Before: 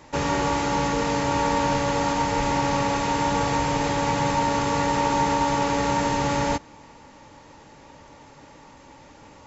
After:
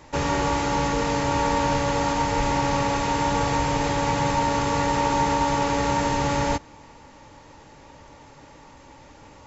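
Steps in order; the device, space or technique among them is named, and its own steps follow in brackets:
low shelf boost with a cut just above (low-shelf EQ 94 Hz +5.5 dB; parametric band 200 Hz −2.5 dB)

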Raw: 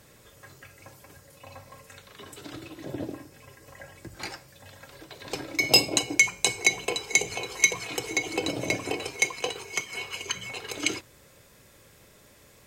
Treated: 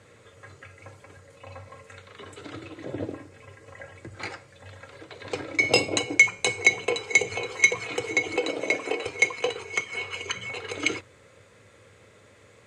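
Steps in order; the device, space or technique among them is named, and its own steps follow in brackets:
car door speaker (loudspeaker in its box 86–8,700 Hz, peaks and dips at 98 Hz +10 dB, 150 Hz −4 dB, 480 Hz +7 dB, 1,300 Hz +5 dB, 2,100 Hz +5 dB, 5,300 Hz −7 dB)
0:08.36–0:09.06: high-pass filter 300 Hz 12 dB per octave
high-shelf EQ 6,800 Hz −4.5 dB

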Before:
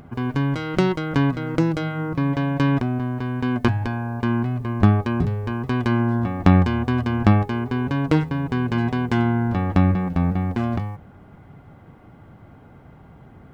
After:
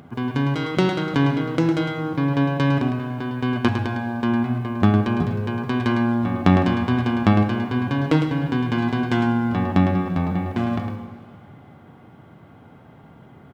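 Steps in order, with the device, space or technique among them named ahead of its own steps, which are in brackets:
PA in a hall (high-pass filter 110 Hz; parametric band 3,400 Hz +4.5 dB 0.44 octaves; single-tap delay 106 ms −7.5 dB; convolution reverb RT60 2.2 s, pre-delay 28 ms, DRR 10 dB)

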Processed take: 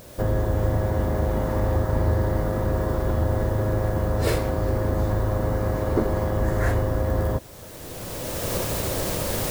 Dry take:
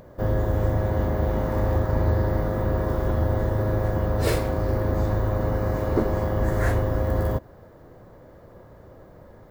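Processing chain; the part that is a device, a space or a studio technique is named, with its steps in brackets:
cheap recorder with automatic gain (white noise bed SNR 27 dB; camcorder AGC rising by 17 dB per second)

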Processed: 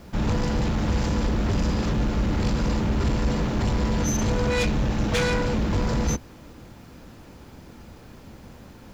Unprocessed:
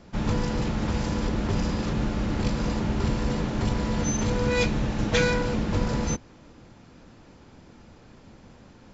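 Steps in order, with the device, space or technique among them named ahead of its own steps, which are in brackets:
open-reel tape (soft clipping −23.5 dBFS, distortion −12 dB; parametric band 60 Hz +5 dB 0.84 octaves; white noise bed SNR 40 dB)
level +4.5 dB

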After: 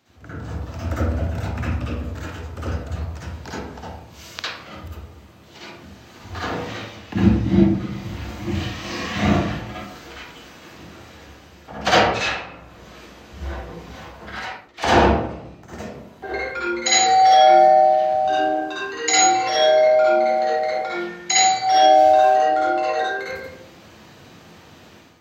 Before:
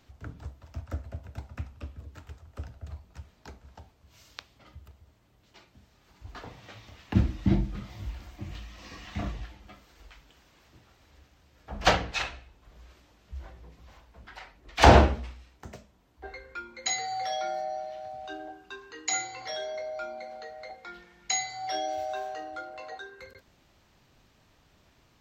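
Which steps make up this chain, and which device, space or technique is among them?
far laptop microphone (convolution reverb RT60 0.75 s, pre-delay 49 ms, DRR −8.5 dB; high-pass filter 130 Hz 12 dB per octave; automatic gain control gain up to 10.5 dB)
level −1 dB

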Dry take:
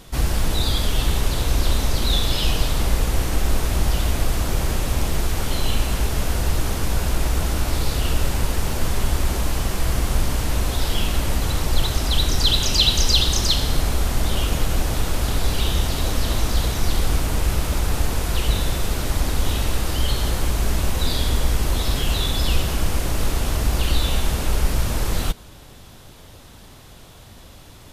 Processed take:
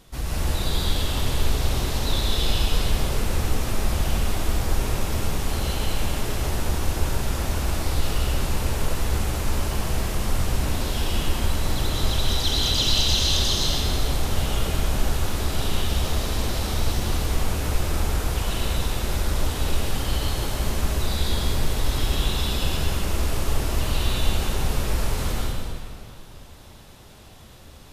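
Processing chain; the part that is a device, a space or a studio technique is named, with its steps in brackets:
stairwell (convolution reverb RT60 2.4 s, pre-delay 104 ms, DRR −5.5 dB)
level −8.5 dB

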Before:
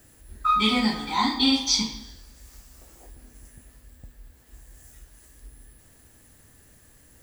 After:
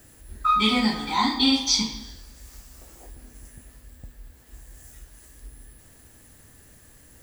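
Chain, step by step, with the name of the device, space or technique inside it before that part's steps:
parallel compression (in parallel at −8 dB: downward compressor, threshold −32 dBFS, peak gain reduction 14.5 dB)

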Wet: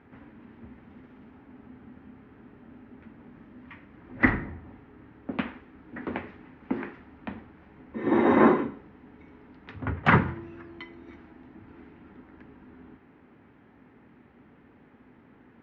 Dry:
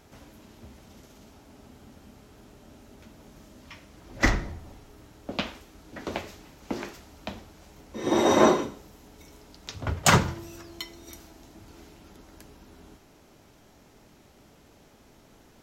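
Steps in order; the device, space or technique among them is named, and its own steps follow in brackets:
bass cabinet (loudspeaker in its box 77–2,300 Hz, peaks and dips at 250 Hz +7 dB, 630 Hz −8 dB, 1,800 Hz +4 dB)

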